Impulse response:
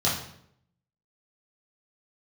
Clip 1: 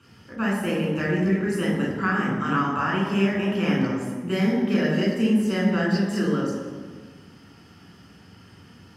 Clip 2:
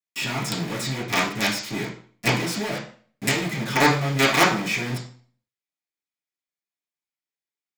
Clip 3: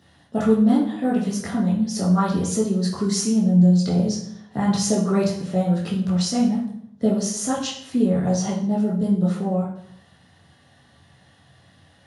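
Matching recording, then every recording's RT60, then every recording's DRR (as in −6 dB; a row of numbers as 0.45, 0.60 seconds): 3; 1.5, 0.45, 0.70 seconds; −4.0, −10.5, −8.5 decibels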